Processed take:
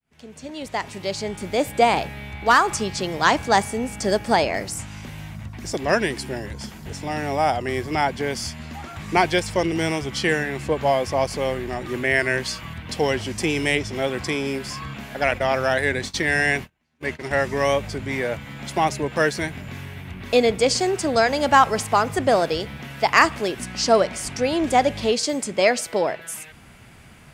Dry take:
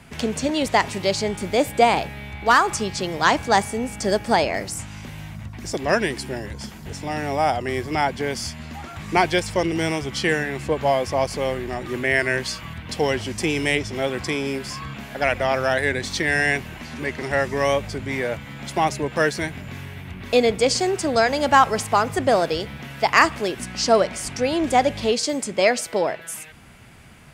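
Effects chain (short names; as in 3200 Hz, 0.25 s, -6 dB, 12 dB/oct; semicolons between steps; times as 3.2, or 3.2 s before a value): opening faded in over 2.03 s; 15.31–17.31 gate -28 dBFS, range -37 dB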